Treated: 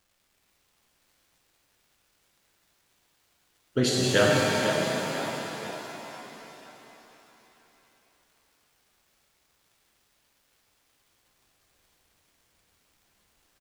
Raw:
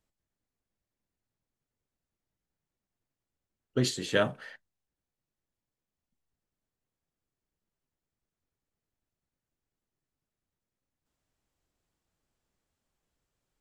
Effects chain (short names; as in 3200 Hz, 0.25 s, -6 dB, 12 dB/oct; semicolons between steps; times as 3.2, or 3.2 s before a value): crackle 400/s -60 dBFS; frequency-shifting echo 0.494 s, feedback 44%, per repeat +31 Hz, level -9 dB; shimmer reverb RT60 3.6 s, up +7 st, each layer -8 dB, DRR -3 dB; gain +2.5 dB